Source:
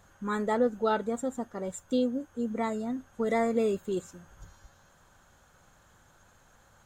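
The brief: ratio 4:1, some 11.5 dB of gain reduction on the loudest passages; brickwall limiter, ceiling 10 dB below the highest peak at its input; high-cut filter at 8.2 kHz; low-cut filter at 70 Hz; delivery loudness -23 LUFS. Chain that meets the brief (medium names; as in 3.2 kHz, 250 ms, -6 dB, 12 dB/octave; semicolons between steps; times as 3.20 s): high-pass 70 Hz; low-pass 8.2 kHz; compression 4:1, threshold -36 dBFS; trim +21.5 dB; peak limiter -14.5 dBFS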